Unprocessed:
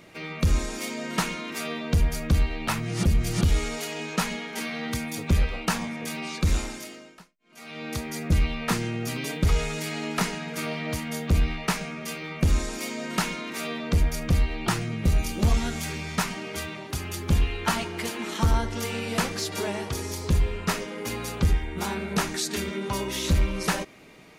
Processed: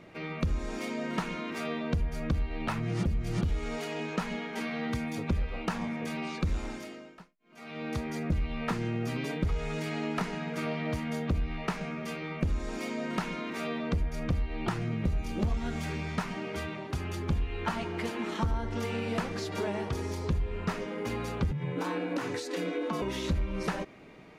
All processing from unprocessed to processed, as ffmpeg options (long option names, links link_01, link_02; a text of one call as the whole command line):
ffmpeg -i in.wav -filter_complex "[0:a]asettb=1/sr,asplit=3[link_01][link_02][link_03];[link_01]atrim=end=21.514[link_04];[link_02]atrim=start=21.51:end=23.02,asetpts=PTS-STARTPTS,afade=type=in:duration=0.004:curve=qsin,afade=type=out:start_time=1.506:duration=0.004:curve=qsin,afreqshift=100,acompressor=threshold=-25dB:ratio=6:attack=3.2:release=140:knee=1:detection=peak[link_05];[link_03]atrim=start=23.016[link_06];[link_04][link_05]acrossfade=duration=0.004:curve1=hsin:curve2=qsin[link_07];[link_07][link_06]acrossfade=duration=0.004:curve1=qsin:curve2=hsin,acompressor=threshold=-26dB:ratio=6,lowpass=frequency=1700:poles=1" out.wav